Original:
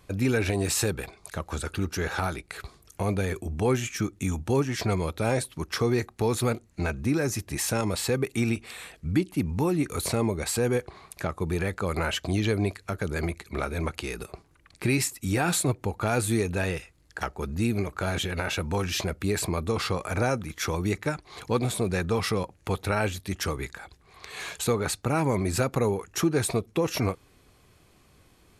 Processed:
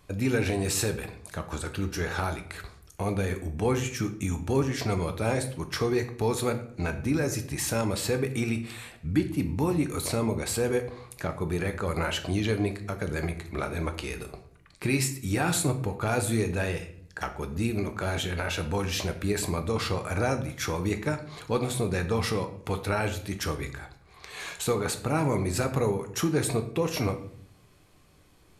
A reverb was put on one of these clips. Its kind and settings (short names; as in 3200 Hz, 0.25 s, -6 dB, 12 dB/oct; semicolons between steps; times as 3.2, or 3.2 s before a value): shoebox room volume 100 m³, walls mixed, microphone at 0.38 m; gain -2 dB